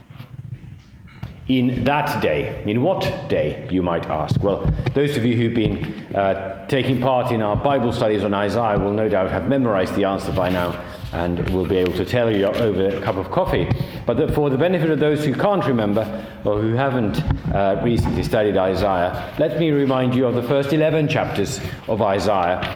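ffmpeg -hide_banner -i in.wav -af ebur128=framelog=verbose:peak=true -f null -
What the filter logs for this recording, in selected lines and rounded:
Integrated loudness:
  I:         -19.9 LUFS
  Threshold: -30.1 LUFS
Loudness range:
  LRA:         1.7 LU
  Threshold: -40.0 LUFS
  LRA low:   -20.8 LUFS
  LRA high:  -19.1 LUFS
True peak:
  Peak:       -2.9 dBFS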